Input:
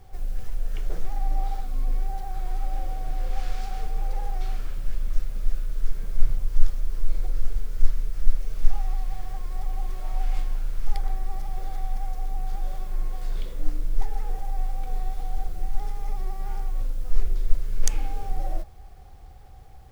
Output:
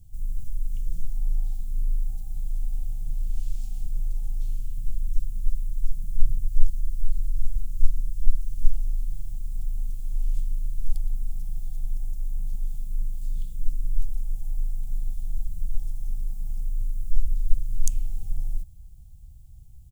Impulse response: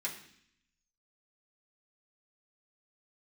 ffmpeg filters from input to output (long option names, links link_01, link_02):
-af "firequalizer=gain_entry='entry(160,0);entry(300,-19);entry(580,-30);entry(1900,-29);entry(2800,-14);entry(5000,-11);entry(7200,0)':delay=0.05:min_phase=1"